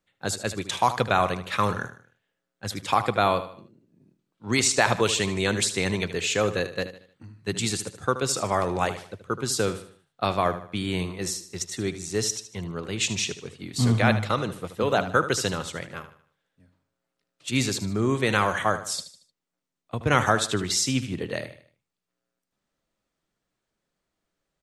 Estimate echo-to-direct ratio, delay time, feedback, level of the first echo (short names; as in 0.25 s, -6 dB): -11.5 dB, 76 ms, 40%, -12.5 dB